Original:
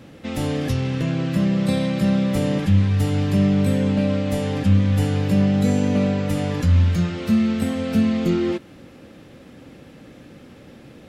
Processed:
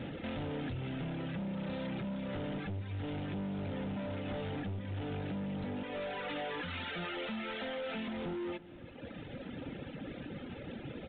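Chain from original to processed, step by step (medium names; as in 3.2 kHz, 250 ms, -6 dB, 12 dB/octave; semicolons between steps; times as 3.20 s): CVSD coder 32 kbps; reverb removal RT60 1.3 s; 5.83–8.08 s: high-pass 530 Hz 12 dB/octave; compression 5:1, threshold -35 dBFS, peak gain reduction 19.5 dB; hard clipper -39.5 dBFS, distortion -7 dB; Butterworth band-stop 1.1 kHz, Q 7.9; echo from a far wall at 57 m, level -19 dB; trim +3.5 dB; µ-law 64 kbps 8 kHz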